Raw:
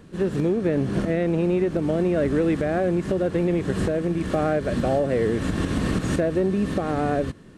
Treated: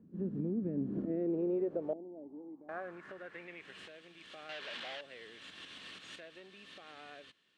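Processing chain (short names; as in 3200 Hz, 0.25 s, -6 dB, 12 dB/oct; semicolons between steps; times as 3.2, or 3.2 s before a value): 4.49–5.01 overdrive pedal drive 27 dB, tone 1900 Hz, clips at -12 dBFS; band-pass sweep 220 Hz -> 3200 Hz, 0.72–3.95; 1.93–2.69 vocal tract filter u; gain -7.5 dB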